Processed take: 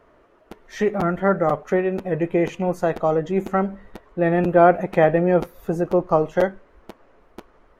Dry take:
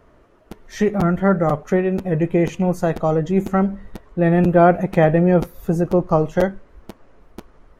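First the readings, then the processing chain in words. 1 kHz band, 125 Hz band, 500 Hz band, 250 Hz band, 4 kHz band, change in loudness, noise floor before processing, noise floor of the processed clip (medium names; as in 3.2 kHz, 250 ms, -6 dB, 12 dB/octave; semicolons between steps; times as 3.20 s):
0.0 dB, -7.0 dB, -0.5 dB, -5.0 dB, no reading, -2.5 dB, -53 dBFS, -56 dBFS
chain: tone controls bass -9 dB, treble -6 dB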